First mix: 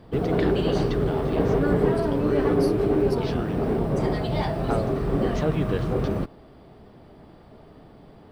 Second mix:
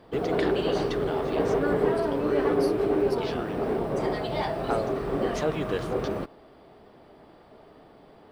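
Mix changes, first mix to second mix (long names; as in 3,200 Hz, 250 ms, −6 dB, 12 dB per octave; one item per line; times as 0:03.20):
first voice: remove high-frequency loss of the air 98 metres
master: add bass and treble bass −11 dB, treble −2 dB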